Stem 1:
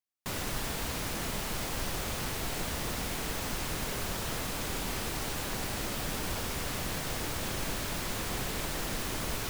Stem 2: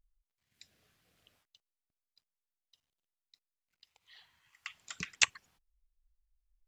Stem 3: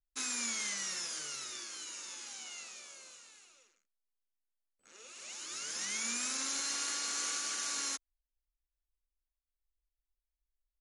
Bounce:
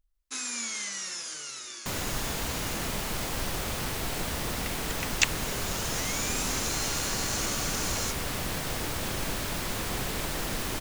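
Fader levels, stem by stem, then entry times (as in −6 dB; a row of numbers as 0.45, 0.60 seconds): +2.5, +2.5, +2.5 decibels; 1.60, 0.00, 0.15 seconds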